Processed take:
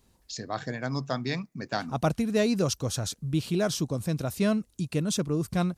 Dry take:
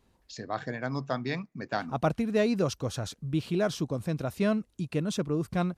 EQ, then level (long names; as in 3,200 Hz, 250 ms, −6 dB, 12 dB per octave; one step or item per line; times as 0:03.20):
bass and treble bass +3 dB, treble +10 dB
0.0 dB